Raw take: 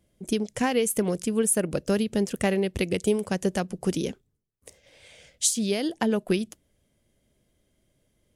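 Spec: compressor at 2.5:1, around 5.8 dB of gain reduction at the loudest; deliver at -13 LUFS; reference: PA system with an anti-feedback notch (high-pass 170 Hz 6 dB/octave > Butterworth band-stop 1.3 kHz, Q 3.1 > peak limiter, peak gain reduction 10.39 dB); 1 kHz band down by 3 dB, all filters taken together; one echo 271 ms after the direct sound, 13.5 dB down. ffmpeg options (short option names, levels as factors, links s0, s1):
-af "equalizer=f=1000:t=o:g=-3.5,acompressor=threshold=0.0398:ratio=2.5,highpass=f=170:p=1,asuperstop=centerf=1300:order=8:qfactor=3.1,aecho=1:1:271:0.211,volume=13.3,alimiter=limit=0.75:level=0:latency=1"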